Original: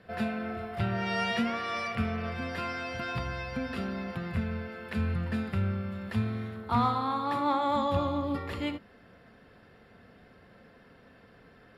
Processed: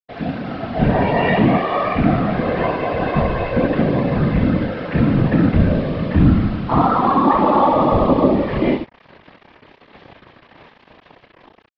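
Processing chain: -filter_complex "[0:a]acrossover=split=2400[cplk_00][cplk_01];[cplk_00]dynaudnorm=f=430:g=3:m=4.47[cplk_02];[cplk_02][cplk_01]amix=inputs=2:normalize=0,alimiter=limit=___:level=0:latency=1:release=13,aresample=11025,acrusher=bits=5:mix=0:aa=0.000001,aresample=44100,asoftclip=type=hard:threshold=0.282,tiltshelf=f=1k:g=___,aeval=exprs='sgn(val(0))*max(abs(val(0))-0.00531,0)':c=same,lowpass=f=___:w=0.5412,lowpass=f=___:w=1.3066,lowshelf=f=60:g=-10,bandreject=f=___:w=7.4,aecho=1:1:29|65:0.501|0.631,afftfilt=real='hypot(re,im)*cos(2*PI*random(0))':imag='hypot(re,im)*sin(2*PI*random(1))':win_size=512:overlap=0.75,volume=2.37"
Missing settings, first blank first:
0.335, 3.5, 3.7k, 3.7k, 1.4k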